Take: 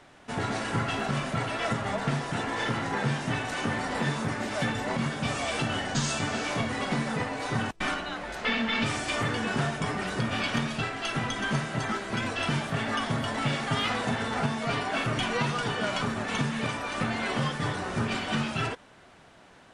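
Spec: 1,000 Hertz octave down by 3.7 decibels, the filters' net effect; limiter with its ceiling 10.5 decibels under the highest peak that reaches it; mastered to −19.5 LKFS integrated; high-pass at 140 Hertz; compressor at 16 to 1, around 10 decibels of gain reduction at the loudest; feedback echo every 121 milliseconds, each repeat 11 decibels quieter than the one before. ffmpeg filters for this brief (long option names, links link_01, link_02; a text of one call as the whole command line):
ffmpeg -i in.wav -af "highpass=140,equalizer=frequency=1000:width_type=o:gain=-5,acompressor=threshold=-35dB:ratio=16,alimiter=level_in=10dB:limit=-24dB:level=0:latency=1,volume=-10dB,aecho=1:1:121|242|363:0.282|0.0789|0.0221,volume=22.5dB" out.wav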